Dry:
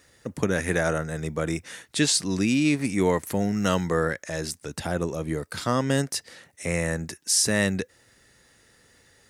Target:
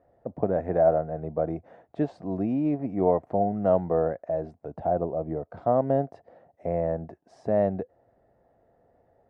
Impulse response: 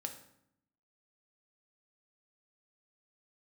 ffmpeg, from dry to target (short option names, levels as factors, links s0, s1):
-af "aeval=exprs='0.447*(cos(1*acos(clip(val(0)/0.447,-1,1)))-cos(1*PI/2))+0.00708*(cos(7*acos(clip(val(0)/0.447,-1,1)))-cos(7*PI/2))':c=same,lowpass=f=690:t=q:w=6.6,volume=0.596"